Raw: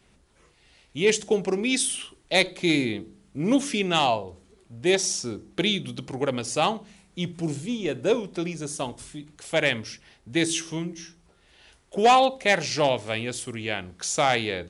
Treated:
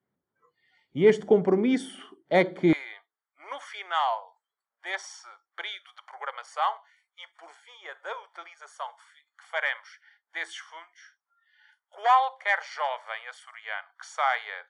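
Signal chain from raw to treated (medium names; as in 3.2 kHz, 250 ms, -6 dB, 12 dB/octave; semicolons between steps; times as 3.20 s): high-pass 110 Hz 24 dB/octave, from 2.73 s 910 Hz; spectral noise reduction 22 dB; Savitzky-Golay filter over 41 samples; trim +3 dB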